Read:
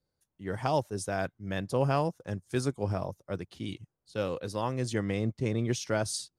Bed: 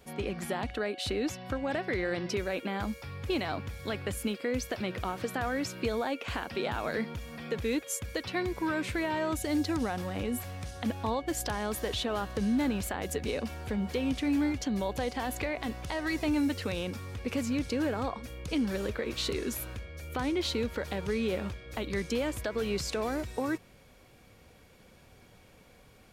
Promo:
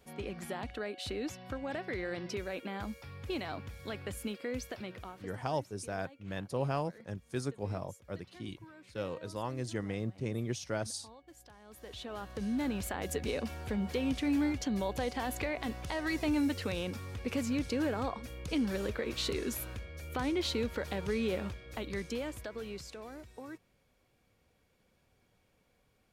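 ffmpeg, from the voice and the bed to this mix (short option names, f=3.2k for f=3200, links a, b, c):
-filter_complex "[0:a]adelay=4800,volume=-6dB[a];[1:a]volume=15.5dB,afade=t=out:st=4.56:d=0.89:silence=0.133352,afade=t=in:st=11.65:d=1.42:silence=0.0841395,afade=t=out:st=21.29:d=1.69:silence=0.237137[b];[a][b]amix=inputs=2:normalize=0"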